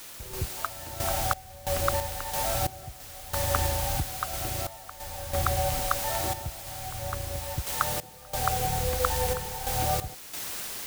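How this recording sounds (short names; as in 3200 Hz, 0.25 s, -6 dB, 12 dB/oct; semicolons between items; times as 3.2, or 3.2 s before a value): a quantiser's noise floor 6-bit, dither triangular; random-step tremolo 3 Hz, depth 90%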